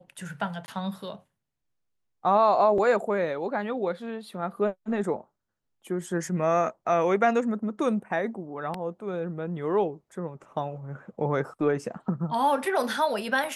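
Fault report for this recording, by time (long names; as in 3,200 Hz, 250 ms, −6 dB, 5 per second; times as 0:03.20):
0:00.66–0:00.68: drop-out 20 ms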